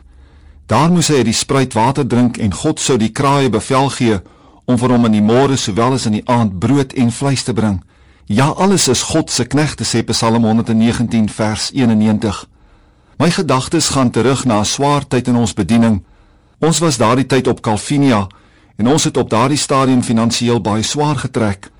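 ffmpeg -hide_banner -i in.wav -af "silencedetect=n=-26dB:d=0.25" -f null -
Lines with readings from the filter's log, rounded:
silence_start: 0.00
silence_end: 0.69 | silence_duration: 0.69
silence_start: 4.20
silence_end: 4.68 | silence_duration: 0.48
silence_start: 7.79
silence_end: 8.30 | silence_duration: 0.51
silence_start: 12.44
silence_end: 13.20 | silence_duration: 0.76
silence_start: 16.00
silence_end: 16.62 | silence_duration: 0.63
silence_start: 18.31
silence_end: 18.79 | silence_duration: 0.48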